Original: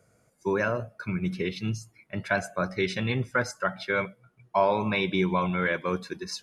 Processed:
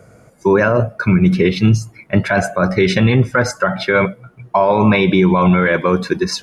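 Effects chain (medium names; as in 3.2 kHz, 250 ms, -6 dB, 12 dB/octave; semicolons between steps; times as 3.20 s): treble shelf 2.4 kHz -9 dB; loudness maximiser +23 dB; trim -3 dB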